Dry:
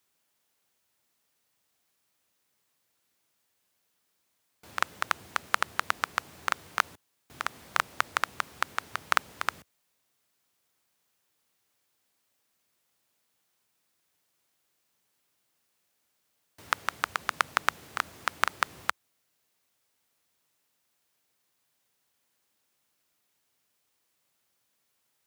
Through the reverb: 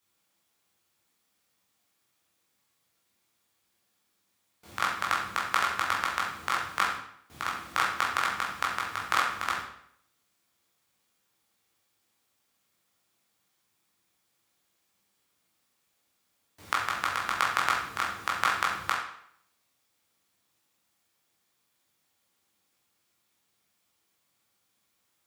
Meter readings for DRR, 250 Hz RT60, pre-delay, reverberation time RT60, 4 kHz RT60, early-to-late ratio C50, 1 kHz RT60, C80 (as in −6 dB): −4.5 dB, 0.70 s, 15 ms, 0.65 s, 0.60 s, 3.5 dB, 0.65 s, 6.5 dB